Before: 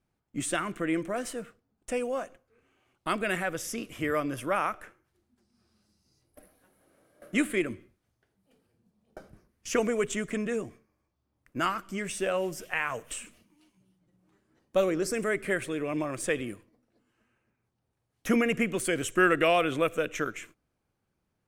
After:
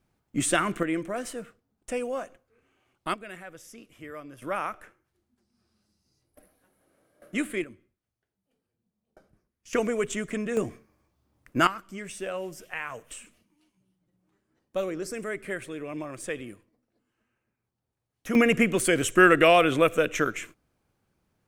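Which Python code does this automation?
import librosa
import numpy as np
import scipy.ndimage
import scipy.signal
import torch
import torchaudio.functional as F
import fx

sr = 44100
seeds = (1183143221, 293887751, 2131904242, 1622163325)

y = fx.gain(x, sr, db=fx.steps((0.0, 6.0), (0.83, 0.0), (3.14, -12.5), (4.42, -2.5), (7.64, -11.0), (9.73, 0.5), (10.57, 7.5), (11.67, -4.5), (18.35, 5.5)))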